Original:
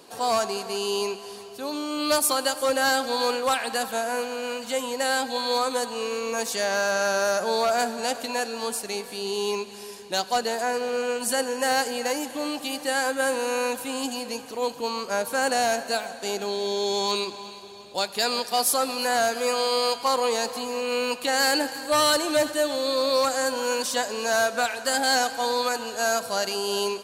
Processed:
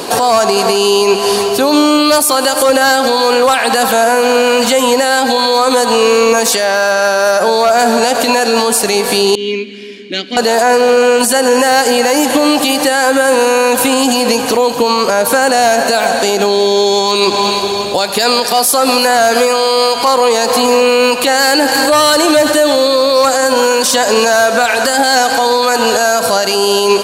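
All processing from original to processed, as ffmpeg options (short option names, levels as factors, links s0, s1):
-filter_complex "[0:a]asettb=1/sr,asplit=3[s0][s1][s2];[s0]atrim=end=6.524[s3];[s1]atrim=start=6.52:end=7.48,asetpts=PTS-STARTPTS,afade=t=in:d=0.004:c=qsin,afade=t=out:st=0.956:d=0.004:c=qsin,highpass=f=210:p=1,bandreject=f=6600:w=8[s4];[s2]atrim=start=7.476[s5];[s3][s4]acrossfade=d=0.004:c1=hsin:c2=qsin[s6];[s6][s5]acrossfade=d=0.004:c1=qsin:c2=hsin,asettb=1/sr,asplit=3[s7][s8][s9];[s7]atrim=end=9.354[s10];[s8]atrim=start=9.35:end=10.37,asetpts=PTS-STARTPTS,afade=t=in:d=0.004:c=qsin,afade=t=out:st=1.016:d=0.004:c=qsin,asplit=3[s11][s12][s13];[s11]bandpass=f=270:t=q:w=8,volume=1[s14];[s12]bandpass=f=2290:t=q:w=8,volume=0.501[s15];[s13]bandpass=f=3010:t=q:w=8,volume=0.355[s16];[s14][s15][s16]amix=inputs=3:normalize=0,equalizer=f=13000:w=0.5:g=-10.5[s17];[s9]atrim=start=10.366[s18];[s10][s17]acrossfade=d=0.004:c1=hsin:c2=qsin[s19];[s19][s18]acrossfade=d=0.004:c1=qsin:c2=hsin,equalizer=f=650:t=o:w=2.4:g=2,acompressor=threshold=0.02:ratio=2,alimiter=level_in=25.1:limit=0.891:release=50:level=0:latency=1,volume=0.891"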